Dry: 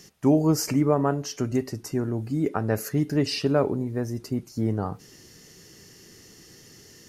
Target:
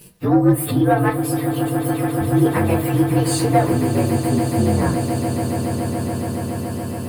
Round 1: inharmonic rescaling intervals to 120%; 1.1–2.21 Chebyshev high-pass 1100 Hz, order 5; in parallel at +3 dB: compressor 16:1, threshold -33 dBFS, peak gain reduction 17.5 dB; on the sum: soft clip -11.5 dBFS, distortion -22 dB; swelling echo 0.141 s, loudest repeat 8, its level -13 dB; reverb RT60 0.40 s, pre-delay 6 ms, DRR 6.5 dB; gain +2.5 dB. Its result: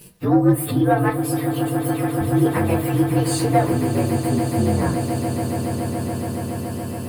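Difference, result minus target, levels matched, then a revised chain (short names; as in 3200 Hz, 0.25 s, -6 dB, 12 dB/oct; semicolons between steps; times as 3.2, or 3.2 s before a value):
compressor: peak gain reduction +6 dB
inharmonic rescaling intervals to 120%; 1.1–2.21 Chebyshev high-pass 1100 Hz, order 5; in parallel at +3 dB: compressor 16:1, threshold -26.5 dBFS, peak gain reduction 11.5 dB; on the sum: soft clip -11.5 dBFS, distortion -20 dB; swelling echo 0.141 s, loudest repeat 8, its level -13 dB; reverb RT60 0.40 s, pre-delay 6 ms, DRR 6.5 dB; gain +2.5 dB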